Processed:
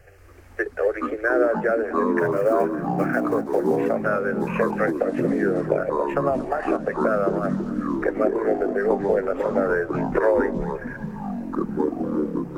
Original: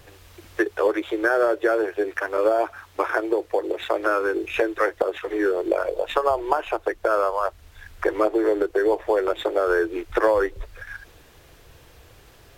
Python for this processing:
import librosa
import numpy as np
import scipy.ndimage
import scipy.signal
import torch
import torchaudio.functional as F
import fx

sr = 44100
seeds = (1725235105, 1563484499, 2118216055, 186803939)

y = fx.block_float(x, sr, bits=5, at=(2.18, 3.82))
y = fx.high_shelf(y, sr, hz=5700.0, db=-11.0)
y = fx.fixed_phaser(y, sr, hz=990.0, stages=6)
y = fx.echo_feedback(y, sr, ms=232, feedback_pct=52, wet_db=-17)
y = fx.echo_pitch(y, sr, ms=181, semitones=-6, count=3, db_per_echo=-3.0)